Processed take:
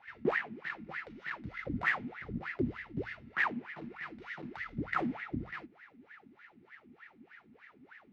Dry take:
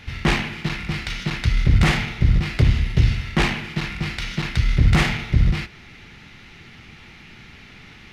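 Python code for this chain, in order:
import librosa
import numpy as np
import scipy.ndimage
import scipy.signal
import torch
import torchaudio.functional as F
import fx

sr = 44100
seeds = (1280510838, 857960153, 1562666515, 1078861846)

y = fx.wah_lfo(x, sr, hz=3.3, low_hz=230.0, high_hz=1900.0, q=12.0)
y = y * librosa.db_to_amplitude(3.5)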